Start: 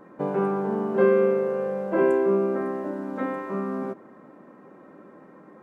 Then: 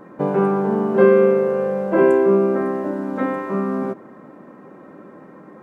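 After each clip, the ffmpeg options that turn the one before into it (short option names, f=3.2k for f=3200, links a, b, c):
-af "equalizer=f=100:w=0.78:g=3.5,volume=6dB"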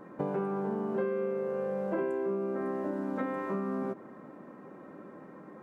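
-af "acompressor=threshold=-23dB:ratio=6,volume=-6.5dB"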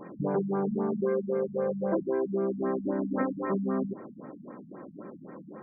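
-af "afftfilt=real='re*lt(b*sr/1024,230*pow(2500/230,0.5+0.5*sin(2*PI*3.8*pts/sr)))':imag='im*lt(b*sr/1024,230*pow(2500/230,0.5+0.5*sin(2*PI*3.8*pts/sr)))':win_size=1024:overlap=0.75,volume=5dB"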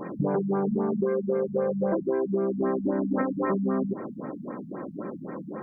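-af "acompressor=threshold=-31dB:ratio=6,volume=8.5dB"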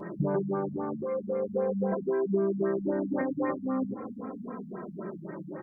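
-filter_complex "[0:a]asplit=2[a][b];[b]adelay=2.7,afreqshift=-0.39[c];[a][c]amix=inputs=2:normalize=1"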